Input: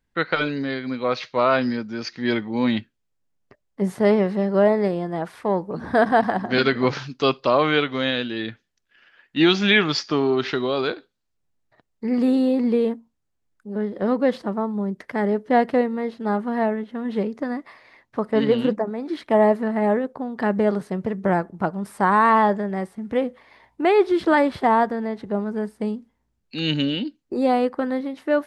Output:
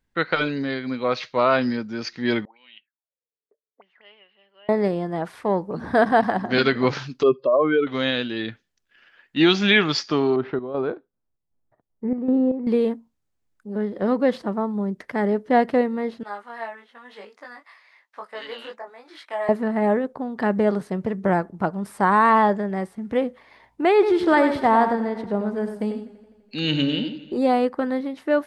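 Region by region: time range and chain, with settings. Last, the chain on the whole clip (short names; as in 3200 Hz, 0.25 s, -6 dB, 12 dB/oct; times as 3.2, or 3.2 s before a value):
2.45–4.69 HPF 240 Hz + auto-wah 420–2900 Hz, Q 13, up, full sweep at -23.5 dBFS + air absorption 250 m
7.23–7.87 spectral contrast raised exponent 2.3 + bell 380 Hz +5.5 dB 0.21 oct
10.36–12.67 LPF 1000 Hz + chopper 2.6 Hz, depth 60%, duty 60%
16.23–19.49 HPF 1000 Hz + chorus 1 Hz, delay 19.5 ms, depth 2.7 ms
23.93–27.38 echo 97 ms -8.5 dB + warbling echo 84 ms, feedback 70%, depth 54 cents, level -18 dB
whole clip: dry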